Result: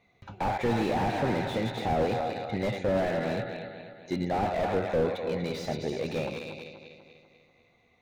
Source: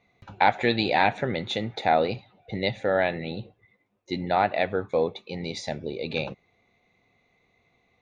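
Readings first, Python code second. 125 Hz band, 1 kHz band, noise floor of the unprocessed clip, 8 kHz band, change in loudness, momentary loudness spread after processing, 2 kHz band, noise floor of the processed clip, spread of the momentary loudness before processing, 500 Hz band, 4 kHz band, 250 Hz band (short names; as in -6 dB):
+1.5 dB, -5.5 dB, -69 dBFS, n/a, -3.5 dB, 13 LU, -7.5 dB, -66 dBFS, 13 LU, -2.0 dB, -7.5 dB, +0.5 dB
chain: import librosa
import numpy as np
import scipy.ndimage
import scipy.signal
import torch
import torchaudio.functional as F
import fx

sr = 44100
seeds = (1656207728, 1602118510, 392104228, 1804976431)

y = fx.reverse_delay_fb(x, sr, ms=123, feedback_pct=70, wet_db=-10.0)
y = y + 10.0 ** (-15.5 / 20.0) * np.pad(y, (int(317 * sr / 1000.0), 0))[:len(y)]
y = fx.slew_limit(y, sr, full_power_hz=37.0)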